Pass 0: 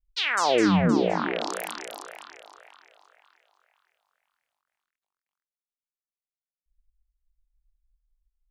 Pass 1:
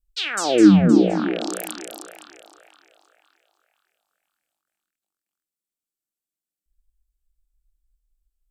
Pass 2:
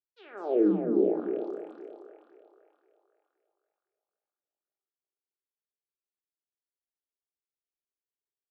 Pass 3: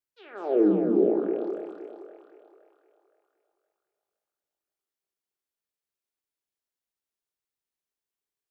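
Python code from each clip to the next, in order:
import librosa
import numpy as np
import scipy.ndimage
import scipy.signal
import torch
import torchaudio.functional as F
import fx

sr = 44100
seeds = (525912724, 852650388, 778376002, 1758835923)

y1 = fx.graphic_eq_31(x, sr, hz=(200, 315, 1000, 2000, 8000, 12500), db=(8, 11, -12, -7, 8, 8))
y1 = y1 * 10.0 ** (1.5 / 20.0)
y2 = fx.ladder_bandpass(y1, sr, hz=460.0, resonance_pct=55)
y2 = fx.room_shoebox(y2, sr, seeds[0], volume_m3=970.0, walls='furnished', distance_m=1.3)
y3 = y2 + 10.0 ** (-9.0 / 20.0) * np.pad(y2, (int(186 * sr / 1000.0), 0))[:len(y2)]
y3 = y3 * 10.0 ** (2.5 / 20.0)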